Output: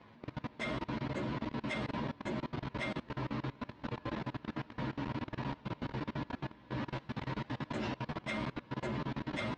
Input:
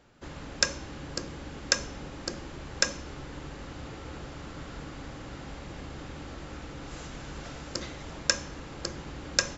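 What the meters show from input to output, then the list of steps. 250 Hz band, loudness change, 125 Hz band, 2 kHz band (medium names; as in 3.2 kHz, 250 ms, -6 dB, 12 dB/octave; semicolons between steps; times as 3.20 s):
+3.5 dB, -5.0 dB, +2.0 dB, -6.5 dB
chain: frequency axis rescaled in octaves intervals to 114%; cabinet simulation 100–4100 Hz, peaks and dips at 120 Hz +6 dB, 230 Hz +9 dB, 970 Hz +8 dB; level held to a coarse grid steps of 22 dB; trim +7.5 dB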